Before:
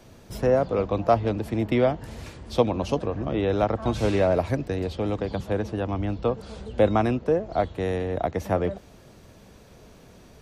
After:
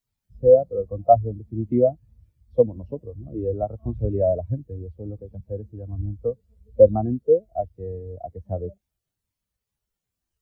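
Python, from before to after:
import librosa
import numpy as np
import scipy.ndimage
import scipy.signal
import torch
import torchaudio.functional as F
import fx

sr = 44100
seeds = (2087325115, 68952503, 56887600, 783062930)

y = fx.low_shelf(x, sr, hz=110.0, db=6.5)
y = fx.quant_dither(y, sr, seeds[0], bits=6, dither='triangular')
y = fx.spectral_expand(y, sr, expansion=2.5)
y = F.gain(torch.from_numpy(y), 3.5).numpy()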